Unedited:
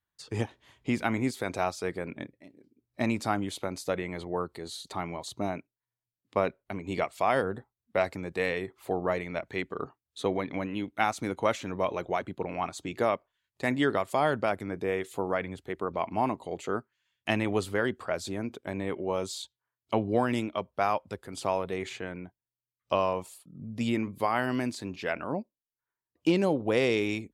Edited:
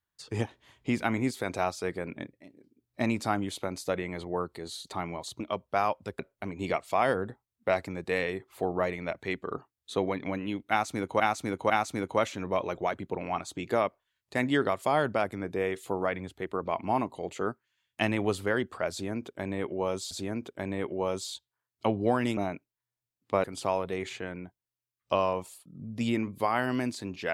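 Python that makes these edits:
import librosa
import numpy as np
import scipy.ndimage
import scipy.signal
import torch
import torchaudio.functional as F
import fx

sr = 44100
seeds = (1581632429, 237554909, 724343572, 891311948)

y = fx.edit(x, sr, fx.swap(start_s=5.4, length_s=1.07, other_s=20.45, other_length_s=0.79),
    fx.repeat(start_s=10.98, length_s=0.5, count=3),
    fx.repeat(start_s=18.19, length_s=1.2, count=2), tone=tone)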